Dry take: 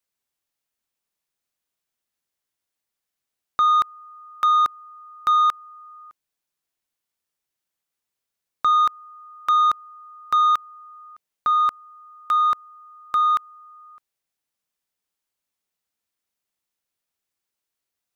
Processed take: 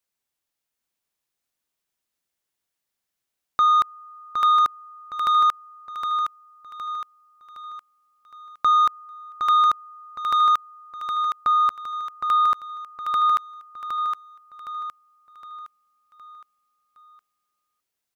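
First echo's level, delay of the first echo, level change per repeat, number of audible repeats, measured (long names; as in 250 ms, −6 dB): −6.0 dB, 764 ms, −7.0 dB, 5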